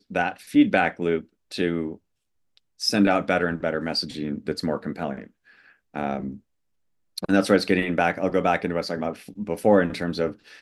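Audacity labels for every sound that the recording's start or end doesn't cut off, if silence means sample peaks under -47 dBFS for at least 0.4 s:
2.570000	6.390000	sound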